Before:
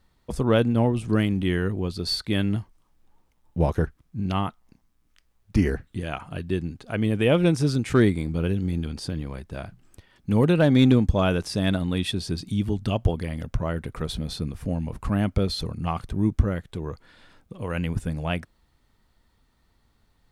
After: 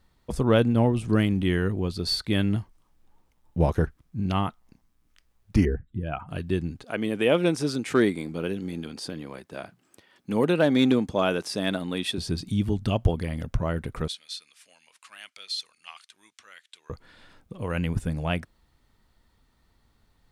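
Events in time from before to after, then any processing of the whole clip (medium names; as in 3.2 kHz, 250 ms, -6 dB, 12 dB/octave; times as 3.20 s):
5.65–6.29 s: spectral contrast enhancement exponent 1.6
6.84–12.18 s: high-pass 250 Hz
14.08–16.90 s: Butterworth band-pass 5 kHz, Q 0.68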